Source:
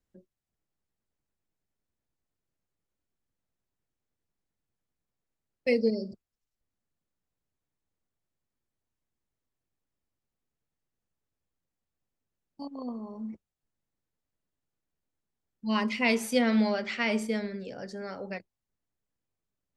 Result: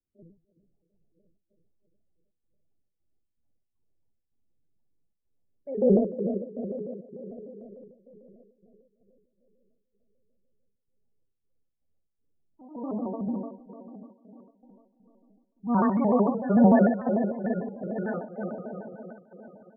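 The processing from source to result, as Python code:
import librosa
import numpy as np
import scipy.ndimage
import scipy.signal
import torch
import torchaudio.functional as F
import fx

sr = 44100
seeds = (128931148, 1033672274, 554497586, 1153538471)

p1 = fx.reverse_delay_fb(x, sr, ms=170, feedback_pct=78, wet_db=-8.5)
p2 = scipy.signal.sosfilt(scipy.signal.ellip(4, 1.0, 40, 1600.0, 'lowpass', fs=sr, output='sos'), p1)
p3 = fx.hum_notches(p2, sr, base_hz=60, count=4)
p4 = fx.transient(p3, sr, attack_db=-3, sustain_db=10)
p5 = fx.step_gate(p4, sr, bpm=80, pattern='.x.x.xx.xxxx.xx', floor_db=-12.0, edge_ms=4.5)
p6 = fx.spec_topn(p5, sr, count=16)
p7 = p6 + fx.echo_feedback(p6, sr, ms=65, feedback_pct=19, wet_db=-3.5, dry=0)
p8 = fx.vibrato_shape(p7, sr, shape='square', rate_hz=6.7, depth_cents=160.0)
y = p8 * 10.0 ** (4.0 / 20.0)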